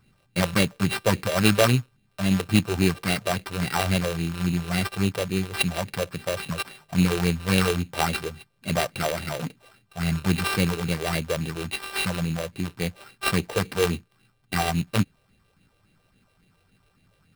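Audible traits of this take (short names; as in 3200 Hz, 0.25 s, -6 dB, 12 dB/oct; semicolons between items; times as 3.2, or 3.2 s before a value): a buzz of ramps at a fixed pitch in blocks of 16 samples; phasing stages 4, 3.6 Hz, lowest notch 200–1100 Hz; aliases and images of a low sample rate 6700 Hz, jitter 0%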